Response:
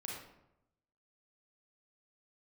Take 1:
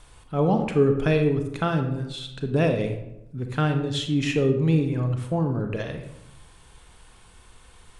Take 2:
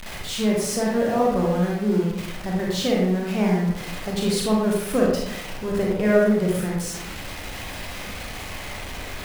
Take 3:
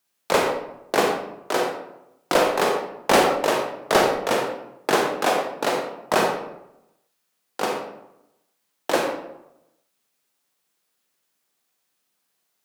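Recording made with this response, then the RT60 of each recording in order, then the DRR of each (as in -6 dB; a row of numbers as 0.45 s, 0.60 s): 2; 0.85 s, 0.85 s, 0.85 s; 5.5 dB, -3.5 dB, 1.0 dB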